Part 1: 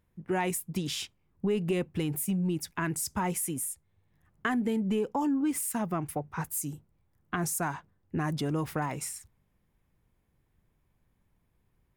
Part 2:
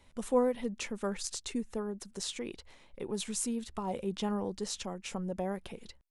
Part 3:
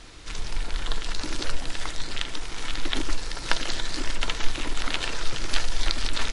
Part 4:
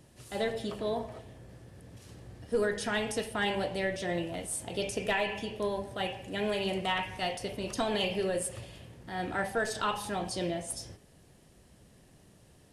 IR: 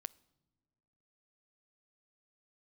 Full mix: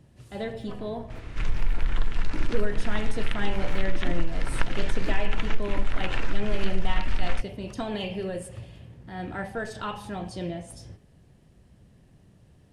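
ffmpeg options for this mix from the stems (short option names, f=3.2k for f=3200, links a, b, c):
-filter_complex "[1:a]aeval=exprs='abs(val(0))':c=same,adelay=350,volume=-19dB[a];[2:a]acompressor=threshold=-24dB:ratio=6,highshelf=f=3.1k:t=q:w=1.5:g=-6.5,adelay=1100,volume=1dB[b];[3:a]equalizer=f=11k:t=o:w=0.34:g=-3,volume=-2.5dB[c];[a][b][c]amix=inputs=3:normalize=0,bass=f=250:g=8,treble=f=4k:g=-6"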